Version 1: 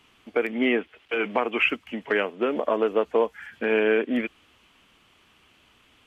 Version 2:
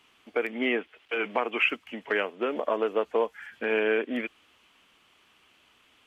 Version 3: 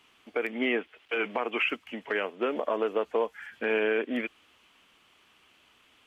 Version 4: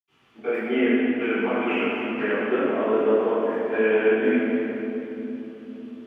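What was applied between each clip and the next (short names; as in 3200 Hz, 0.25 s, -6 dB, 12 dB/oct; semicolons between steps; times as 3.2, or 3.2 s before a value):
low shelf 220 Hz -10 dB; gain -2 dB
limiter -17 dBFS, peak gain reduction 5 dB
reverb RT60 3.6 s, pre-delay 76 ms; gain +3.5 dB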